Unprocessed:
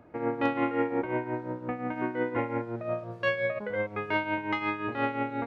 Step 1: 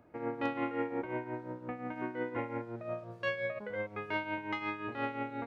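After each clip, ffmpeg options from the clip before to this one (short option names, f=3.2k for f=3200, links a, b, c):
-af "highshelf=f=4.8k:g=6,volume=-7dB"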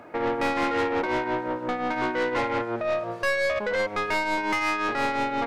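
-filter_complex "[0:a]asplit=2[a][b];[b]highpass=f=720:p=1,volume=26dB,asoftclip=type=tanh:threshold=-18.5dB[c];[a][c]amix=inputs=2:normalize=0,lowpass=f=4.4k:p=1,volume=-6dB,volume=1.5dB"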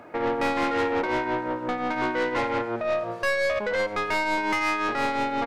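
-af "aecho=1:1:90:0.119"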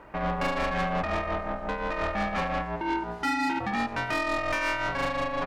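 -af "aeval=exprs='val(0)*sin(2*PI*290*n/s)':c=same"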